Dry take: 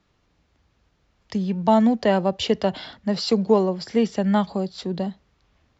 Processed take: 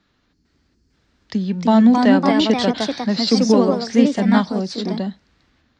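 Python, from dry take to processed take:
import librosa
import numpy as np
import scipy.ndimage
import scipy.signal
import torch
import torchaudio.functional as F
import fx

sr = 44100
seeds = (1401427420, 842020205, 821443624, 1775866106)

y = fx.spec_box(x, sr, start_s=0.33, length_s=0.6, low_hz=450.0, high_hz=4200.0, gain_db=-15)
y = fx.graphic_eq_15(y, sr, hz=(250, 1600, 4000), db=(9, 8, 8))
y = fx.echo_pitch(y, sr, ms=451, semitones=2, count=2, db_per_echo=-3.0)
y = y * librosa.db_to_amplitude(-1.5)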